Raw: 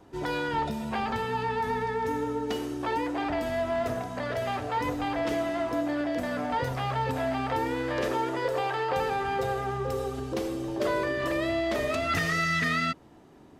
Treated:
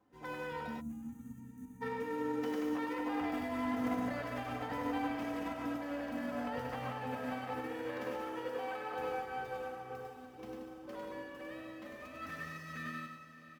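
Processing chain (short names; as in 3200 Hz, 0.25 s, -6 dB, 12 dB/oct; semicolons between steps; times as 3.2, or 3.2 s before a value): median filter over 5 samples; Doppler pass-by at 4.08, 11 m/s, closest 16 m; bouncing-ball echo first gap 0.1 s, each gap 0.8×, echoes 5; limiter -27 dBFS, peak gain reduction 11 dB; graphic EQ 125/250/500/1000/4000/8000 Hz +5/+7/+6/+4/-7/-5 dB; diffused feedback echo 0.611 s, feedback 52%, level -11 dB; spectral gain 0.81–1.82, 340–5800 Hz -25 dB; HPF 62 Hz; passive tone stack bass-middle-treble 5-5-5; comb 3.9 ms, depth 48%; de-hum 98.55 Hz, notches 16; upward expander 1.5:1, over -55 dBFS; gain +9.5 dB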